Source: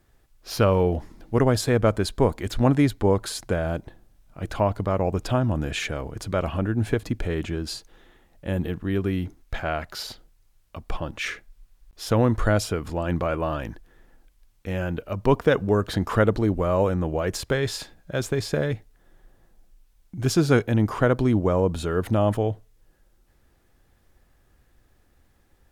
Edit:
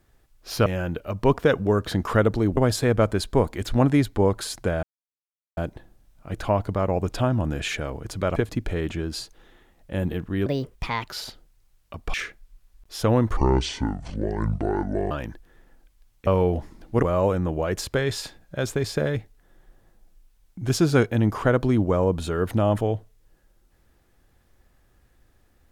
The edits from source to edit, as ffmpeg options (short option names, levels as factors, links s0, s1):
-filter_complex "[0:a]asplit=12[s0][s1][s2][s3][s4][s5][s6][s7][s8][s9][s10][s11];[s0]atrim=end=0.662[s12];[s1]atrim=start=14.678:end=16.592[s13];[s2]atrim=start=1.418:end=3.68,asetpts=PTS-STARTPTS,afade=t=out:st=2.258:d=0.004:c=hsin,apad=pad_dur=0.74[s14];[s3]atrim=start=3.68:end=6.472,asetpts=PTS-STARTPTS,afade=t=in:d=0.004:c=hsin[s15];[s4]atrim=start=6.898:end=9.004[s16];[s5]atrim=start=9:end=9.9,asetpts=PTS-STARTPTS,asetrate=64386,aresample=44100[s17];[s6]atrim=start=9.896:end=10.962[s18];[s7]atrim=start=11.208:end=12.444[s19];[s8]atrim=start=12.44:end=13.52,asetpts=PTS-STARTPTS,asetrate=27342,aresample=44100,atrim=end_sample=76819,asetpts=PTS-STARTPTS[s20];[s9]atrim=start=13.516:end=14.682[s21];[s10]atrim=start=0.658:end=1.422[s22];[s11]atrim=start=16.588[s23];[s12][s13]acrossfade=d=0.004:c1=hsin:c2=hsin[s24];[s14][s15]concat=n=2:v=0:a=1[s25];[s24][s25]acrossfade=d=0.004:c1=hsin:c2=hsin[s26];[s26][s16]acrossfade=d=0.004:c1=hsin:c2=hsin[s27];[s27][s17]acrossfade=d=0.004:c1=hsin:c2=hsin[s28];[s28][s18]acrossfade=d=0.004:c1=hsin:c2=hsin[s29];[s29][s19]acrossfade=d=0.004:c1=hsin:c2=hsin[s30];[s30][s20]acrossfade=d=0.004:c1=hsin:c2=hsin[s31];[s31][s21]acrossfade=d=0.004:c1=hsin:c2=hsin[s32];[s32][s22]acrossfade=d=0.004:c1=hsin:c2=hsin[s33];[s33][s23]acrossfade=d=0.004:c1=hsin:c2=hsin"